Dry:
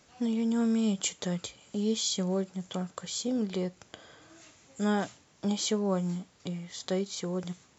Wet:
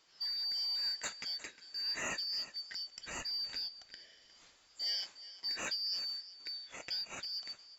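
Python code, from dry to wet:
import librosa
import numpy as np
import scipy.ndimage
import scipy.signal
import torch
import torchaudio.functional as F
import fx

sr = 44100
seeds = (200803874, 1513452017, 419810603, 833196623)

p1 = fx.band_shuffle(x, sr, order='4321')
p2 = fx.low_shelf(p1, sr, hz=93.0, db=11.5, at=(2.87, 4.83))
p3 = p2 + 10.0 ** (-16.5 / 20.0) * np.pad(p2, (int(358 * sr / 1000.0), 0))[:len(p2)]
p4 = np.clip(p3, -10.0 ** (-32.0 / 20.0), 10.0 ** (-32.0 / 20.0))
p5 = p3 + (p4 * 10.0 ** (-11.0 / 20.0))
p6 = fx.bass_treble(p5, sr, bass_db=-7, treble_db=-6)
y = p6 * 10.0 ** (-6.5 / 20.0)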